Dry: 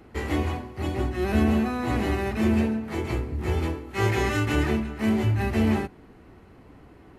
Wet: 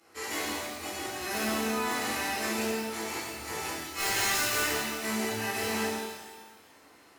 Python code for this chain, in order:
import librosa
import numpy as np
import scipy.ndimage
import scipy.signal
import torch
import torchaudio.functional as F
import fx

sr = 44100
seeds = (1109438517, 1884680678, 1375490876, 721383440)

y = fx.highpass(x, sr, hz=1300.0, slope=6)
y = fx.band_shelf(y, sr, hz=7700.0, db=9.5, octaves=1.7)
y = (np.mod(10.0 ** (22.0 / 20.0) * y + 1.0, 2.0) - 1.0) / 10.0 ** (22.0 / 20.0)
y = fx.rev_shimmer(y, sr, seeds[0], rt60_s=1.3, semitones=12, shimmer_db=-8, drr_db=-11.0)
y = F.gain(torch.from_numpy(y), -9.0).numpy()